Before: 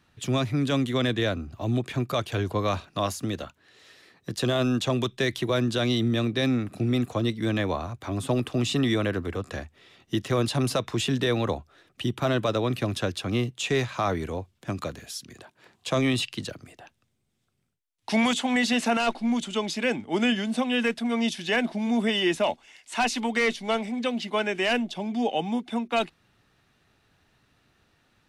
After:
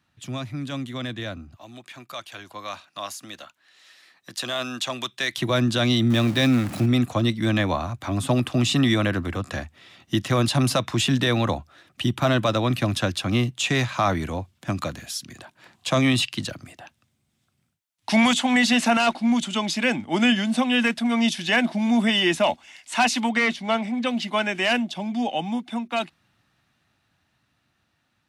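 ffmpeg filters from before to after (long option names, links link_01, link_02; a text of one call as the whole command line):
ffmpeg -i in.wav -filter_complex "[0:a]asettb=1/sr,asplit=3[link_01][link_02][link_03];[link_01]atrim=end=1.564[link_04];[link_02]atrim=start=1.56:end=5.37,asetpts=PTS-STARTPTS,afade=type=in:duration=0.004:curve=qsin,afade=type=out:start_time=3.806:duration=0.004:curve=qsin,highpass=frequency=1000:poles=1[link_05];[link_03]atrim=start=5.366[link_06];[link_04][link_05]acrossfade=duration=0.004:curve1=hsin:curve2=qsin[link_07];[link_07][link_06]acrossfade=duration=0.004:curve1=qsin:curve2=hsin,asettb=1/sr,asplit=3[link_08][link_09][link_10];[link_08]atrim=end=6.104[link_11];[link_09]atrim=start=6.1:end=6.86,asetpts=PTS-STARTPTS,afade=type=in:duration=0.004:curve=qsin,afade=type=out:start_time=0.756:duration=0.004:curve=qsin,aeval=exprs='val(0)+0.5*0.0168*sgn(val(0))':channel_layout=same[link_12];[link_10]atrim=start=6.856[link_13];[link_11][link_12]acrossfade=duration=0.004:curve1=hsin:curve2=qsin[link_14];[link_14][link_13]acrossfade=duration=0.004:curve1=qsin:curve2=hsin,asettb=1/sr,asplit=3[link_15][link_16][link_17];[link_15]atrim=end=23.294[link_18];[link_16]atrim=start=23.29:end=24.07,asetpts=PTS-STARTPTS,afade=type=in:duration=0.004:curve=qsin,afade=type=out:start_time=0.776:duration=0.004:curve=qsin,highshelf=frequency=4800:gain=-9[link_19];[link_17]atrim=start=24.066[link_20];[link_18][link_19]acrossfade=duration=0.004:curve1=hsin:curve2=qsin[link_21];[link_21][link_20]acrossfade=duration=0.004:curve1=qsin:curve2=hsin,highpass=66,equalizer=frequency=430:width_type=o:width=0.4:gain=-11.5,dynaudnorm=framelen=600:gausssize=13:maxgain=11.5dB,volume=-5dB" out.wav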